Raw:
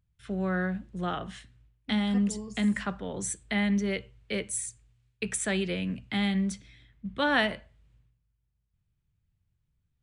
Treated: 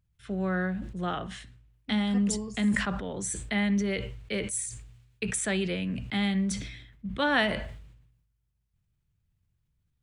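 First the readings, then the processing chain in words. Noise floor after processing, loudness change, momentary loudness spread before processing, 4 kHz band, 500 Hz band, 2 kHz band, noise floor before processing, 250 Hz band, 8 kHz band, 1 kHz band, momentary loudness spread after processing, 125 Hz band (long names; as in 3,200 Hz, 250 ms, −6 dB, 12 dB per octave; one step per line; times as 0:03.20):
−76 dBFS, +0.5 dB, 13 LU, +0.5 dB, +0.5 dB, +0.5 dB, −77 dBFS, +0.5 dB, +1.5 dB, +0.5 dB, 12 LU, +1.0 dB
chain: level that may fall only so fast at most 59 dB per second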